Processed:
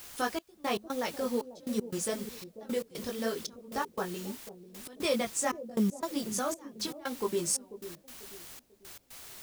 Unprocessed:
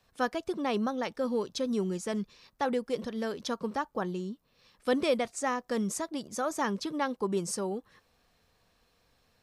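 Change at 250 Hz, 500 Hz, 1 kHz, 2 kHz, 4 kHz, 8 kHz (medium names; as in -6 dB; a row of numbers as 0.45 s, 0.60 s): -2.5 dB, -3.0 dB, -3.5 dB, -2.0 dB, +1.5 dB, +5.0 dB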